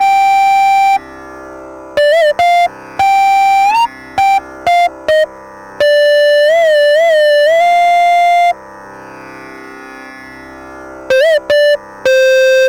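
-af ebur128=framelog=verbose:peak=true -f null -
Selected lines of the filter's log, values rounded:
Integrated loudness:
  I:          -9.9 LUFS
  Threshold: -21.2 LUFS
Loudness range:
  LRA:         6.6 LU
  Threshold: -31.2 LUFS
  LRA low:   -15.6 LUFS
  LRA high:   -9.0 LUFS
True peak:
  Peak:       -7.1 dBFS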